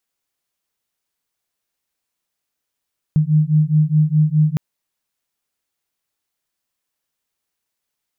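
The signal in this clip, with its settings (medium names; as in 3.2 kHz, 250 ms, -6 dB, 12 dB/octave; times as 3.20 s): beating tones 151 Hz, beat 4.8 Hz, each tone -15 dBFS 1.41 s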